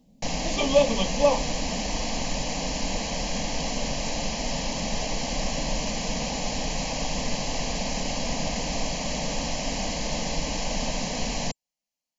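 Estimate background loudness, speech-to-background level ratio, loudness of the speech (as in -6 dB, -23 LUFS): -29.0 LUFS, 4.5 dB, -24.5 LUFS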